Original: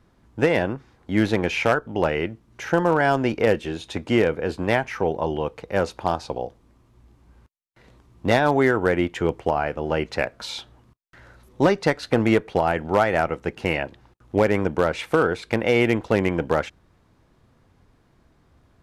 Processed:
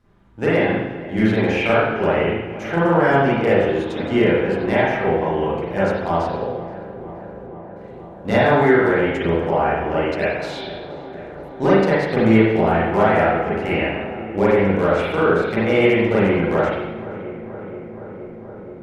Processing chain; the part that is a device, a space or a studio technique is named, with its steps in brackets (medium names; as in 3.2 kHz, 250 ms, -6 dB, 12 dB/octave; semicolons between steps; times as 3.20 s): dub delay into a spring reverb (filtered feedback delay 474 ms, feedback 82%, low-pass 2.3 kHz, level -16 dB; spring tank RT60 1 s, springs 36/41 ms, chirp 60 ms, DRR -9.5 dB); trim -6 dB